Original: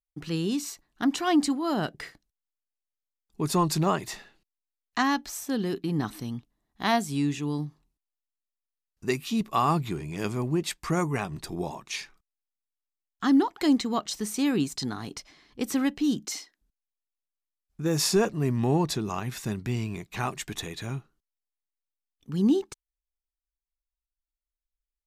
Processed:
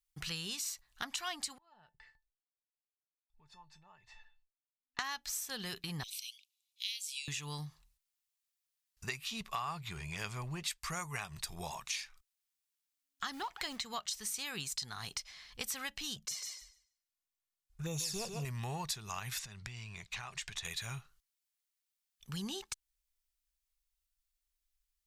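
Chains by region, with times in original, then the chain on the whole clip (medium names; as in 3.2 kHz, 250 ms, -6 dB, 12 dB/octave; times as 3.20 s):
1.58–4.99 s: tape spacing loss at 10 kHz 32 dB + compression 2.5:1, threshold -44 dBFS + feedback comb 880 Hz, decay 0.15 s, mix 90%
6.03–7.28 s: steep high-pass 2.3 kHz 96 dB/octave + treble shelf 8.1 kHz -5.5 dB
9.06–10.68 s: low-pass 4 kHz 6 dB/octave + hard clipper -14 dBFS
13.33–13.82 s: companding laws mixed up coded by mu + treble shelf 5.4 kHz -9 dB
16.16–18.45 s: tilt shelf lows +4 dB, about 1.2 kHz + touch-sensitive flanger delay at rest 2.8 ms, full sweep at -20.5 dBFS + thinning echo 146 ms, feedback 17%, high-pass 170 Hz, level -7 dB
19.39–20.65 s: low-pass 6.4 kHz + compression 8:1, threshold -39 dBFS
whole clip: amplifier tone stack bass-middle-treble 10-0-10; compression 4:1, threshold -47 dBFS; trim +9 dB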